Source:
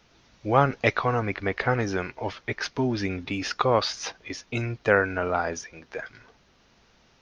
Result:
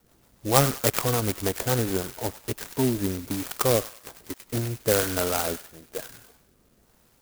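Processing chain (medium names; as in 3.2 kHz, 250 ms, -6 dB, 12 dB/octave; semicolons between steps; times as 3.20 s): dead-time distortion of 0.19 ms; rotary cabinet horn 6.7 Hz, later 1.1 Hz, at 1.99 s; on a send: feedback echo behind a high-pass 98 ms, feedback 36%, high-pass 1.8 kHz, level -5 dB; on the sum: sampling jitter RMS 0.12 ms; trim +3 dB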